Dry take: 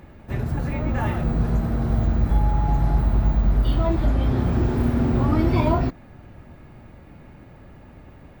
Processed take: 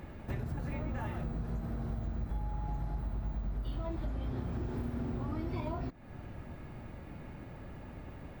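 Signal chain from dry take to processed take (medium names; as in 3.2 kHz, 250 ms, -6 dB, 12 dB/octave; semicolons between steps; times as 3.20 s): compression 6:1, threshold -33 dBFS, peak gain reduction 17.5 dB; trim -1.5 dB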